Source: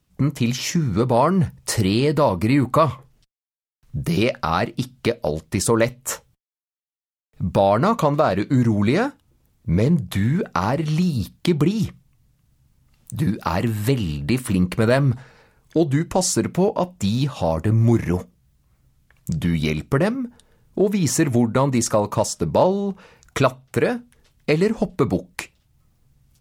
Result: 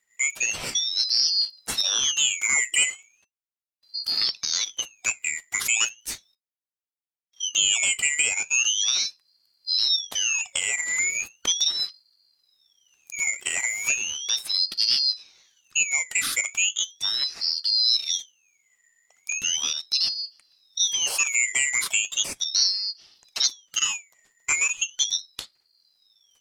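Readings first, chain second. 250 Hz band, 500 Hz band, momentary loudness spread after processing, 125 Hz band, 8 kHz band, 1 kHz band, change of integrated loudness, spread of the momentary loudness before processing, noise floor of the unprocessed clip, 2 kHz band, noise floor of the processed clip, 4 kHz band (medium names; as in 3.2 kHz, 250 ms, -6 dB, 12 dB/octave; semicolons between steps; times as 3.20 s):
under -30 dB, -29.0 dB, 11 LU, under -35 dB, +9.0 dB, -19.5 dB, -1.5 dB, 11 LU, under -85 dBFS, +4.5 dB, under -85 dBFS, +12.0 dB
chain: four frequency bands reordered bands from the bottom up 4321; ring modulator with a swept carrier 1.4 kHz, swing 85%, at 0.37 Hz; trim -2.5 dB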